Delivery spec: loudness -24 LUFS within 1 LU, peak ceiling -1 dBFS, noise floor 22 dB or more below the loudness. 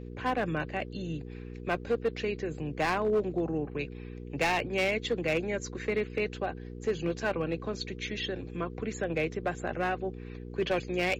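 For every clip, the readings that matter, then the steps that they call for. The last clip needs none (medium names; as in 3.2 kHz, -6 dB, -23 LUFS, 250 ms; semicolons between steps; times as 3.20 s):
clipped samples 1.3%; clipping level -22.0 dBFS; hum 60 Hz; highest harmonic 480 Hz; hum level -40 dBFS; loudness -32.0 LUFS; peak level -22.0 dBFS; loudness target -24.0 LUFS
-> clip repair -22 dBFS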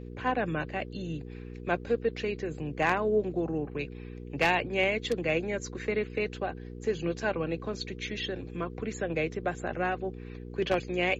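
clipped samples 0.0%; hum 60 Hz; highest harmonic 480 Hz; hum level -40 dBFS
-> de-hum 60 Hz, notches 8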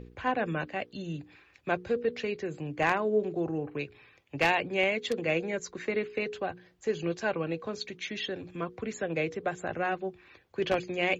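hum not found; loudness -32.0 LUFS; peak level -12.5 dBFS; loudness target -24.0 LUFS
-> trim +8 dB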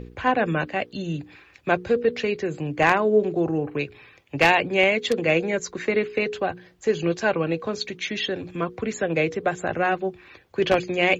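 loudness -24.0 LUFS; peak level -4.5 dBFS; noise floor -54 dBFS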